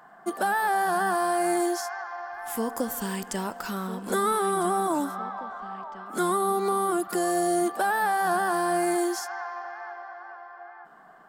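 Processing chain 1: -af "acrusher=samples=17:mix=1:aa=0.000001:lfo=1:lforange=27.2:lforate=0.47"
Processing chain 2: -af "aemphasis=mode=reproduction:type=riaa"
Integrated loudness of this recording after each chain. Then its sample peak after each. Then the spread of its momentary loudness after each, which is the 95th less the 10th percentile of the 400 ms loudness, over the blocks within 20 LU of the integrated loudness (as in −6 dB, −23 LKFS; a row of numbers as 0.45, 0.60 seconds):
−26.5, −24.5 LKFS; −15.0, −11.0 dBFS; 14, 14 LU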